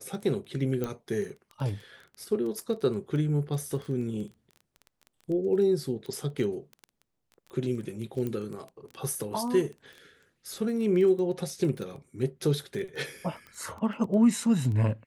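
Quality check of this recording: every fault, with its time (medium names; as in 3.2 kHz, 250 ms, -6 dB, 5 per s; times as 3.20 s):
crackle 12 per s -34 dBFS
0.84 s: pop -18 dBFS
8.27 s: pop -21 dBFS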